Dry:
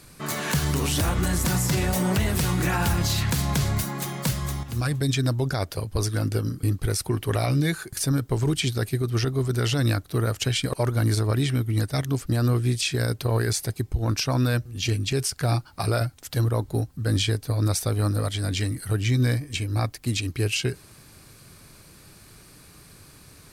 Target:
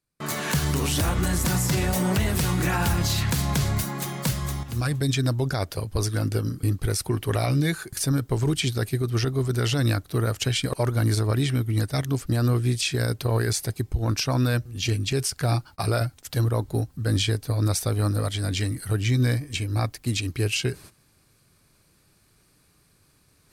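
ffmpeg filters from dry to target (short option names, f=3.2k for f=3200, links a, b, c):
-af "agate=range=-34dB:threshold=-42dB:ratio=16:detection=peak,areverse,acompressor=mode=upward:threshold=-43dB:ratio=2.5,areverse"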